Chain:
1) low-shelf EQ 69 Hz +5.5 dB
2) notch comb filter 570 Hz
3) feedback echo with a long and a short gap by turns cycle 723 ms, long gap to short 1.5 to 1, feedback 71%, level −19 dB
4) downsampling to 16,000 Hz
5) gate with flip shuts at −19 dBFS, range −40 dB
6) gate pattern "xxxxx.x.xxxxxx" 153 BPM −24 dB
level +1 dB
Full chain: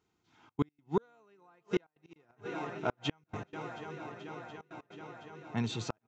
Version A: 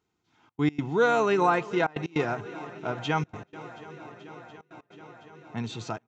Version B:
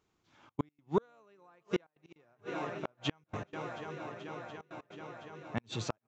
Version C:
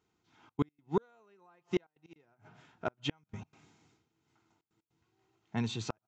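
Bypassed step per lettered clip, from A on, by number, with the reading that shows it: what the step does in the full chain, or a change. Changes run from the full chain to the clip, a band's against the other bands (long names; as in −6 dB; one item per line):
5, change in momentary loudness spread +9 LU
2, 250 Hz band −1.5 dB
3, 2 kHz band −3.0 dB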